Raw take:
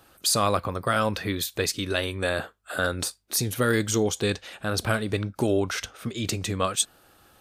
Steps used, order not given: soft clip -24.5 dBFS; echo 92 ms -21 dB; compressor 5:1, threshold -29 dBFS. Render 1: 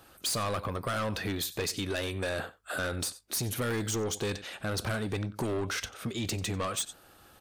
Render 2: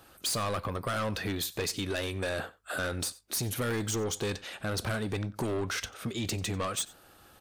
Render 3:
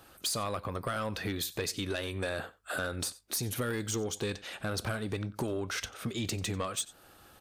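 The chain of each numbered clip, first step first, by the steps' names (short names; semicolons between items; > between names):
echo > soft clip > compressor; soft clip > compressor > echo; compressor > echo > soft clip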